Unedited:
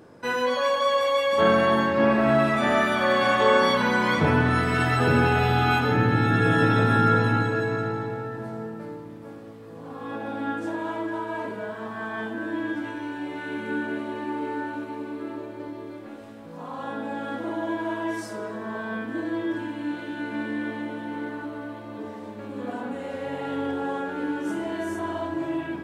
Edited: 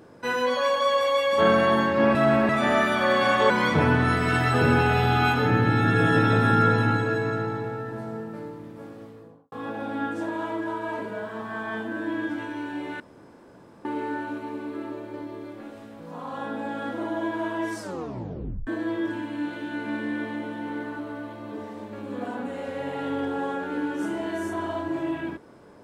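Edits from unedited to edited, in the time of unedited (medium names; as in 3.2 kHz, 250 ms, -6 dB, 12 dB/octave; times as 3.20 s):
2.15–2.49 s: reverse
3.50–3.96 s: delete
9.50–9.98 s: studio fade out
13.46–14.31 s: room tone
18.26 s: tape stop 0.87 s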